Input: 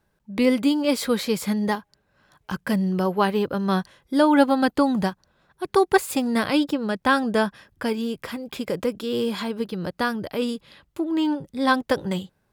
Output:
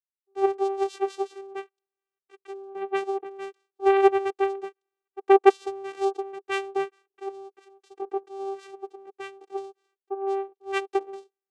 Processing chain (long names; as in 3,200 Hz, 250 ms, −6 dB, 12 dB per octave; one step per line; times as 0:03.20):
low-shelf EQ 170 Hz +3.5 dB
channel vocoder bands 4, saw 359 Hz
wrong playback speed 44.1 kHz file played as 48 kHz
multiband upward and downward expander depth 100%
level −7.5 dB